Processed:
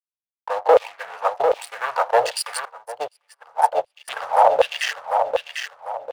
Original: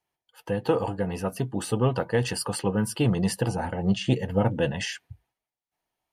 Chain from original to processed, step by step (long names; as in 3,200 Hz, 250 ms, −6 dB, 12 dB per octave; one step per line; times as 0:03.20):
adaptive Wiener filter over 25 samples
leveller curve on the samples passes 3
parametric band 70 Hz −4.5 dB 1.2 octaves
rectangular room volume 4,000 cubic metres, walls furnished, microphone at 0.39 metres
dead-zone distortion −36.5 dBFS
auto-filter high-pass saw down 1.3 Hz 530–3,200 Hz
drawn EQ curve 100 Hz 0 dB, 210 Hz −18 dB, 310 Hz −14 dB, 600 Hz +8 dB, 2,200 Hz −3 dB
on a send: repeating echo 747 ms, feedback 32%, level −5 dB
0:02.65–0:04.08: on the sum: expander for the loud parts 2.5 to 1, over −33 dBFS